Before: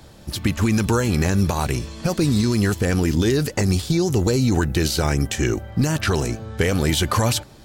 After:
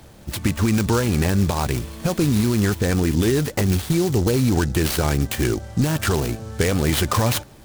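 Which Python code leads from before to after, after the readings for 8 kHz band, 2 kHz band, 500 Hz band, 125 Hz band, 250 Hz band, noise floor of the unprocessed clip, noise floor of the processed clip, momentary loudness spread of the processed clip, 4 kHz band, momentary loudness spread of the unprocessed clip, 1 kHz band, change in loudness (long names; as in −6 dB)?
−0.5 dB, −0.5 dB, 0.0 dB, 0.0 dB, 0.0 dB, −45 dBFS, −45 dBFS, 5 LU, −1.5 dB, 5 LU, 0.0 dB, 0.0 dB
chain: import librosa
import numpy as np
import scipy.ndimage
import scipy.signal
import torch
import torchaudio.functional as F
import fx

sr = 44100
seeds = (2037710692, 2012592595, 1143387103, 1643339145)

y = fx.noise_mod_delay(x, sr, seeds[0], noise_hz=5400.0, depth_ms=0.047)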